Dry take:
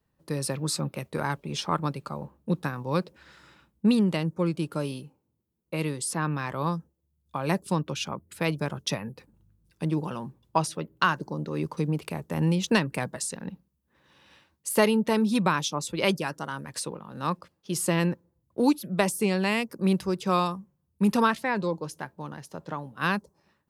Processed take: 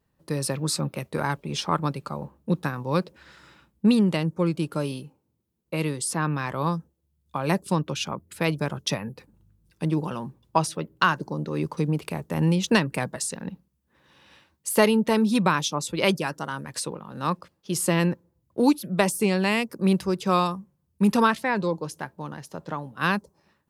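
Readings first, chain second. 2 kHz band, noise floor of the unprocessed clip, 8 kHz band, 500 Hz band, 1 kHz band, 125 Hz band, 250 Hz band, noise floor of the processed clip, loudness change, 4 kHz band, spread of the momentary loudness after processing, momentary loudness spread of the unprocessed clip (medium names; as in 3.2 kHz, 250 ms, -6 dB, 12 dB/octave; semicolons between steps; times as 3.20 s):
+2.5 dB, -76 dBFS, +2.5 dB, +2.5 dB, +2.5 dB, +2.5 dB, +2.5 dB, -73 dBFS, +2.5 dB, +2.5 dB, 13 LU, 13 LU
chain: vibrato 0.41 Hz 5.9 cents; trim +2.5 dB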